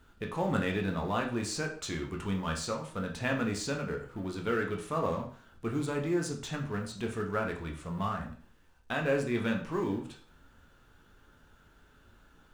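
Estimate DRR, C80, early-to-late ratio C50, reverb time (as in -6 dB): 1.0 dB, 13.0 dB, 8.5 dB, 0.45 s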